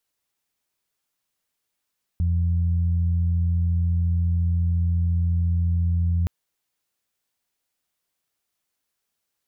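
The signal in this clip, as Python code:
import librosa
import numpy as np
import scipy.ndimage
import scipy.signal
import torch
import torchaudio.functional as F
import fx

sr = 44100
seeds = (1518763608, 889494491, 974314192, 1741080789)

y = fx.additive_steady(sr, length_s=4.07, hz=85.7, level_db=-18.5, upper_db=(-12.0,))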